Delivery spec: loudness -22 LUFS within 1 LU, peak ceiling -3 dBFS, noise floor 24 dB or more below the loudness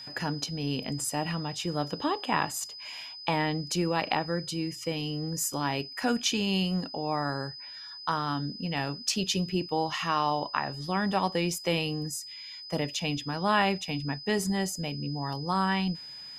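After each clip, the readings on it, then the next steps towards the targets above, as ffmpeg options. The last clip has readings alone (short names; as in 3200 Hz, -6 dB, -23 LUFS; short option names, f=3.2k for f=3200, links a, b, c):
steady tone 5000 Hz; tone level -41 dBFS; loudness -30.0 LUFS; peak -9.0 dBFS; loudness target -22.0 LUFS
-> -af "bandreject=f=5k:w=30"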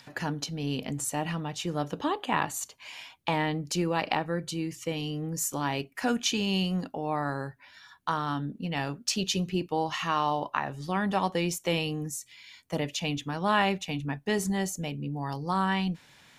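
steady tone none; loudness -30.5 LUFS; peak -9.5 dBFS; loudness target -22.0 LUFS
-> -af "volume=8.5dB,alimiter=limit=-3dB:level=0:latency=1"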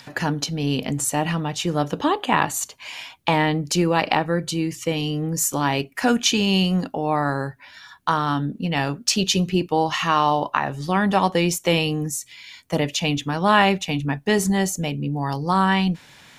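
loudness -22.0 LUFS; peak -3.0 dBFS; noise floor -50 dBFS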